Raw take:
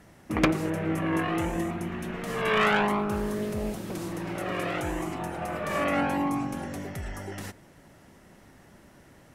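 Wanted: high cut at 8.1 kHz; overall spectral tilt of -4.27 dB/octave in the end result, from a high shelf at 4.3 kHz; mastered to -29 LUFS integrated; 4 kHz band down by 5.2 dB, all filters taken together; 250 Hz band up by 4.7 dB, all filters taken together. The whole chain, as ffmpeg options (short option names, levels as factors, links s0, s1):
-af "lowpass=8100,equalizer=f=250:t=o:g=6.5,equalizer=f=4000:t=o:g=-3.5,highshelf=f=4300:g=-8,volume=0.794"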